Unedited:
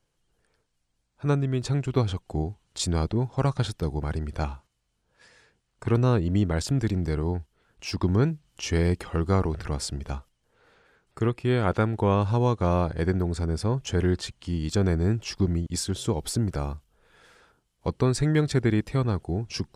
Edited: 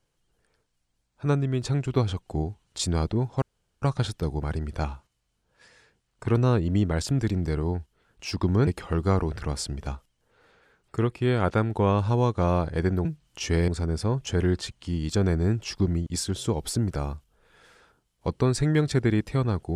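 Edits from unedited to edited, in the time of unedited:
0:03.42: splice in room tone 0.40 s
0:08.27–0:08.90: move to 0:13.28

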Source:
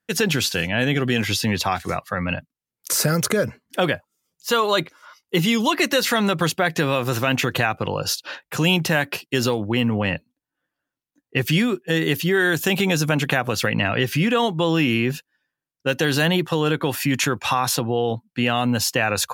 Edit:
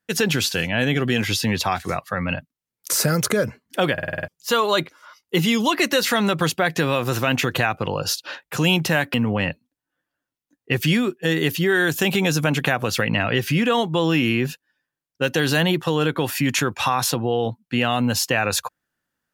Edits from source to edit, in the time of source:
0:03.93: stutter in place 0.05 s, 7 plays
0:09.14–0:09.79: remove

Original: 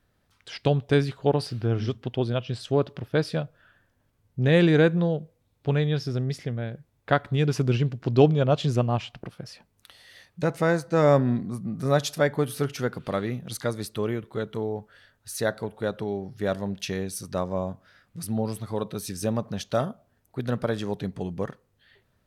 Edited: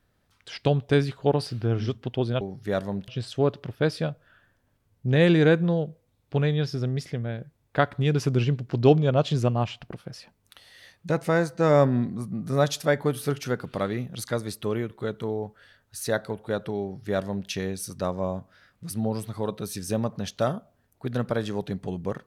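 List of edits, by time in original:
0:16.15–0:16.82: duplicate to 0:02.41

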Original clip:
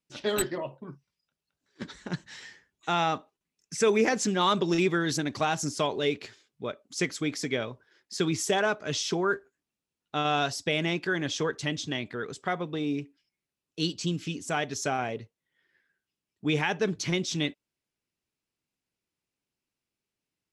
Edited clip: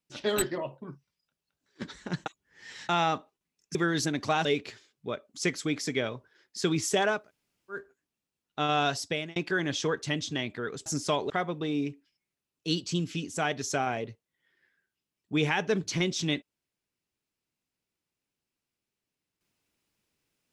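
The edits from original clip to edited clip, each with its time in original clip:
0:02.26–0:02.89: reverse
0:03.75–0:04.87: remove
0:05.57–0:06.01: move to 0:12.42
0:08.75–0:09.36: fill with room tone, crossfade 0.24 s
0:10.60–0:10.92: fade out

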